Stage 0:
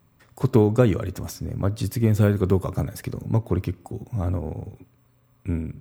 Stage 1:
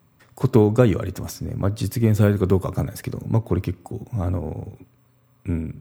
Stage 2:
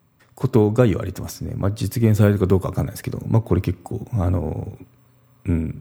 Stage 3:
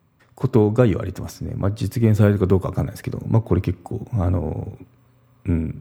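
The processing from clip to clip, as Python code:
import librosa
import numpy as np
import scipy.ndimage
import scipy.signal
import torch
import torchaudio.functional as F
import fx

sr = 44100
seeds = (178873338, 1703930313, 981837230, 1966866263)

y1 = scipy.signal.sosfilt(scipy.signal.butter(2, 66.0, 'highpass', fs=sr, output='sos'), x)
y1 = F.gain(torch.from_numpy(y1), 2.0).numpy()
y2 = fx.rider(y1, sr, range_db=3, speed_s=2.0)
y2 = F.gain(torch.from_numpy(y2), 1.0).numpy()
y3 = fx.high_shelf(y2, sr, hz=5000.0, db=-7.0)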